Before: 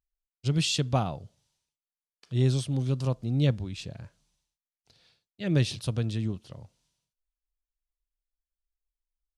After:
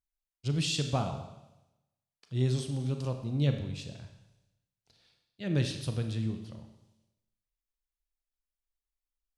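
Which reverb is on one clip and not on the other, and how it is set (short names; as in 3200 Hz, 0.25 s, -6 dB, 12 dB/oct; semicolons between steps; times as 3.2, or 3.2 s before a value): Schroeder reverb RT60 0.95 s, combs from 28 ms, DRR 6 dB; gain -4.5 dB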